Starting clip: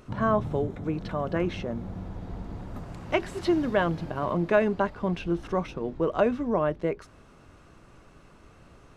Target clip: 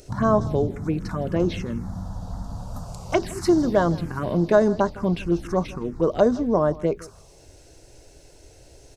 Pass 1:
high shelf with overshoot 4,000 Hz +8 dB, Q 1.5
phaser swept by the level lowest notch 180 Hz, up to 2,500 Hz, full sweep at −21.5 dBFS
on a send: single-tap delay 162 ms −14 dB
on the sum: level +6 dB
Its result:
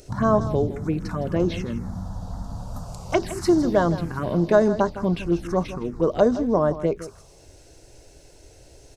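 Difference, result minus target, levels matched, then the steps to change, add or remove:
echo-to-direct +6.5 dB
change: single-tap delay 162 ms −20.5 dB

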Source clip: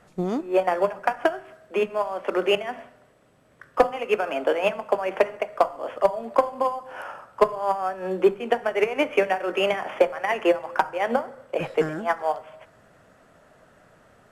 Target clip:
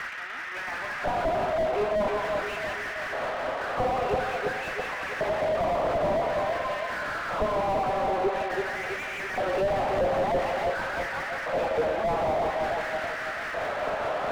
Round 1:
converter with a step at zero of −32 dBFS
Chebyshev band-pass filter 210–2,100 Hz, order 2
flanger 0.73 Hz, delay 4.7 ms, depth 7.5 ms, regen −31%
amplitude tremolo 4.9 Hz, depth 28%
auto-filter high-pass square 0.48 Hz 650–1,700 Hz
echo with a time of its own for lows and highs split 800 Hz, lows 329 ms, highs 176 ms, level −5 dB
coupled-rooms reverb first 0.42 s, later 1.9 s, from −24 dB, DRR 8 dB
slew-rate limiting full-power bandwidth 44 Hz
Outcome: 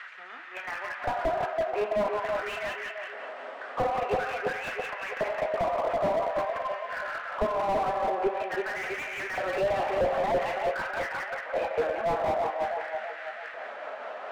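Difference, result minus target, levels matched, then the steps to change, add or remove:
converter with a step at zero: distortion −9 dB
change: converter with a step at zero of −20.5 dBFS

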